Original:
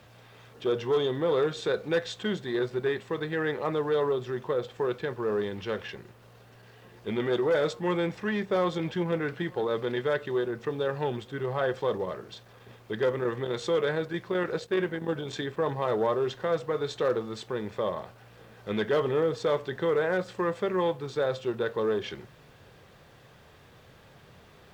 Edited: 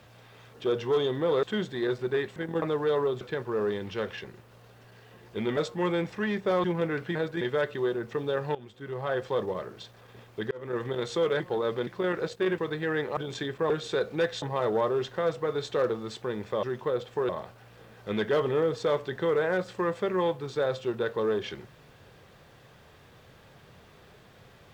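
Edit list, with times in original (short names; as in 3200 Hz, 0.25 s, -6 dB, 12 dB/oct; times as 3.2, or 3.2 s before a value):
1.43–2.15 move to 15.68
3.08–3.67 swap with 14.89–15.15
4.26–4.92 move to 17.89
7.28–7.62 cut
8.69–8.95 cut
9.46–9.93 swap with 13.92–14.18
11.07–12.09 fade in equal-power, from -17.5 dB
13.03–13.34 fade in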